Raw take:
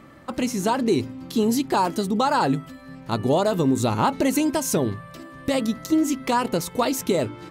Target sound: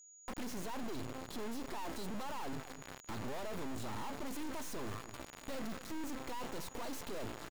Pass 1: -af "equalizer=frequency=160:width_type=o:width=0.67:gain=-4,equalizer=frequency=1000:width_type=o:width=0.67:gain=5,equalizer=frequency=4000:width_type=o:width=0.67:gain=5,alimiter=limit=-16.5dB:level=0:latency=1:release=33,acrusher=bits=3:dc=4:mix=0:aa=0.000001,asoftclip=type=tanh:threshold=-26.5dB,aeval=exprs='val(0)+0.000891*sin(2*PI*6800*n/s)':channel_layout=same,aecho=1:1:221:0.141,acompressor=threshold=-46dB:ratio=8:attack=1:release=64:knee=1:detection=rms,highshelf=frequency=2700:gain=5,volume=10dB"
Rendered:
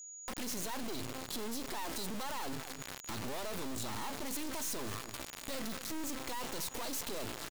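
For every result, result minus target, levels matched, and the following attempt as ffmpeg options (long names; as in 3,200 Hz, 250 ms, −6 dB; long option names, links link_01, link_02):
4,000 Hz band +3.5 dB; soft clipping: distortion −4 dB
-af "equalizer=frequency=160:width_type=o:width=0.67:gain=-4,equalizer=frequency=1000:width_type=o:width=0.67:gain=5,equalizer=frequency=4000:width_type=o:width=0.67:gain=5,alimiter=limit=-16.5dB:level=0:latency=1:release=33,acrusher=bits=3:dc=4:mix=0:aa=0.000001,asoftclip=type=tanh:threshold=-26.5dB,aeval=exprs='val(0)+0.000891*sin(2*PI*6800*n/s)':channel_layout=same,aecho=1:1:221:0.141,acompressor=threshold=-46dB:ratio=8:attack=1:release=64:knee=1:detection=rms,highshelf=frequency=2700:gain=-6.5,volume=10dB"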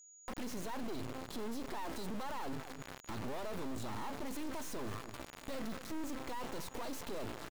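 soft clipping: distortion −4 dB
-af "equalizer=frequency=160:width_type=o:width=0.67:gain=-4,equalizer=frequency=1000:width_type=o:width=0.67:gain=5,equalizer=frequency=4000:width_type=o:width=0.67:gain=5,alimiter=limit=-16.5dB:level=0:latency=1:release=33,acrusher=bits=3:dc=4:mix=0:aa=0.000001,asoftclip=type=tanh:threshold=-37dB,aeval=exprs='val(0)+0.000891*sin(2*PI*6800*n/s)':channel_layout=same,aecho=1:1:221:0.141,acompressor=threshold=-46dB:ratio=8:attack=1:release=64:knee=1:detection=rms,highshelf=frequency=2700:gain=-6.5,volume=10dB"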